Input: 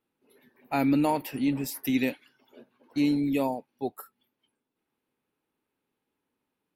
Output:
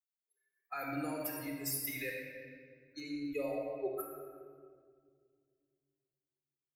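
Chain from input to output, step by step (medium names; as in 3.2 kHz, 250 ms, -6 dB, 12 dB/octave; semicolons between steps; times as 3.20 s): expander on every frequency bin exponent 2; low-pass 3.2 kHz 6 dB/octave, from 3.00 s 1.4 kHz, from 4.00 s 2.5 kHz; tilt EQ +4 dB/octave; peak limiter -28 dBFS, peak gain reduction 8.5 dB; compression, threshold -35 dBFS, peak gain reduction 4 dB; static phaser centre 870 Hz, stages 6; simulated room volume 3700 m³, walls mixed, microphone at 4 m; trim +1.5 dB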